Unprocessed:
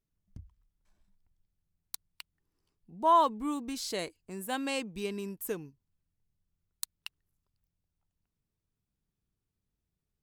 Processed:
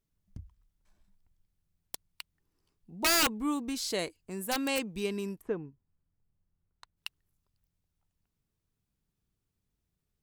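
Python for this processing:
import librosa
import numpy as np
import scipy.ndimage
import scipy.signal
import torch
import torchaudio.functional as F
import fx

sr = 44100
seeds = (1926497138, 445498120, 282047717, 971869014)

y = fx.lowpass(x, sr, hz=1500.0, slope=12, at=(5.4, 6.96), fade=0.02)
y = (np.mod(10.0 ** (22.0 / 20.0) * y + 1.0, 2.0) - 1.0) / 10.0 ** (22.0 / 20.0)
y = F.gain(torch.from_numpy(y), 2.5).numpy()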